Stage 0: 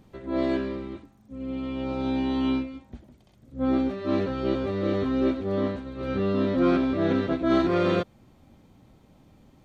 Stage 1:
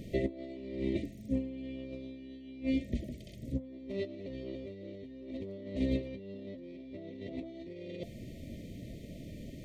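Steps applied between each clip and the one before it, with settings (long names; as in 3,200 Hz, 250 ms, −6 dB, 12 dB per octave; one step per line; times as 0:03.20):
brick-wall band-stop 680–1,800 Hz
brickwall limiter −22.5 dBFS, peak gain reduction 10 dB
compressor whose output falls as the input rises −38 dBFS, ratio −0.5
level +1.5 dB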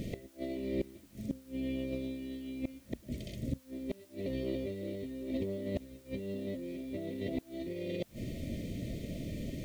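gate with flip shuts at −29 dBFS, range −26 dB
background noise white −72 dBFS
level +6 dB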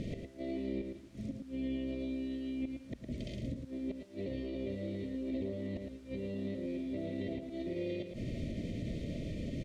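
brickwall limiter −31.5 dBFS, peak gain reduction 9 dB
high-frequency loss of the air 74 metres
slap from a distant wall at 19 metres, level −6 dB
level +1 dB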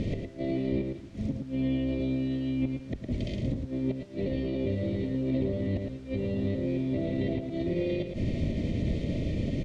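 sub-octave generator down 1 octave, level −4 dB
high-frequency loss of the air 57 metres
level +8 dB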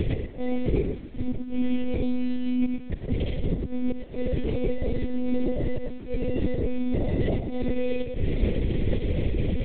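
one-pitch LPC vocoder at 8 kHz 250 Hz
level +5.5 dB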